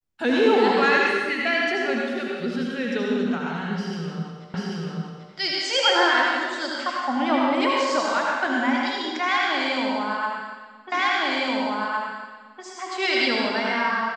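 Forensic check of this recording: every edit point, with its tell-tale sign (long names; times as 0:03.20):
0:04.54: the same again, the last 0.79 s
0:10.92: the same again, the last 1.71 s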